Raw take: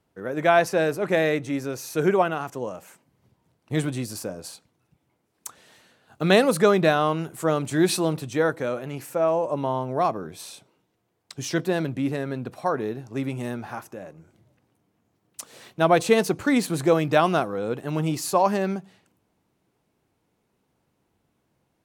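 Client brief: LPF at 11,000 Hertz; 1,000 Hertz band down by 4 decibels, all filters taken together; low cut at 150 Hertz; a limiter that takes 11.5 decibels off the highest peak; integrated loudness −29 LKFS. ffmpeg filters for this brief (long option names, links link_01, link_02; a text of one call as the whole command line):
ffmpeg -i in.wav -af "highpass=150,lowpass=11000,equalizer=frequency=1000:width_type=o:gain=-6,volume=-0.5dB,alimiter=limit=-16.5dB:level=0:latency=1" out.wav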